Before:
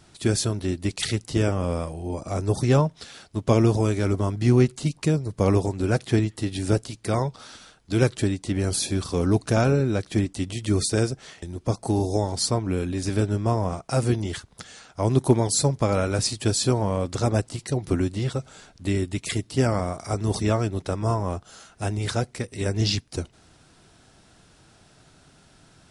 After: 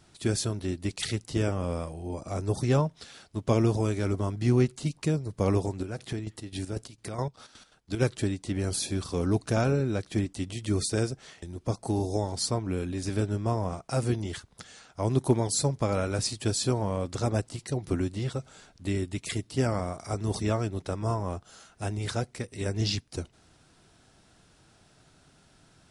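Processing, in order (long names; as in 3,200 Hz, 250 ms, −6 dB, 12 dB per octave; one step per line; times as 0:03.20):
0:05.68–0:07.99: square-wave tremolo 3 Hz → 6.8 Hz, depth 65%, duty 50%
level −5 dB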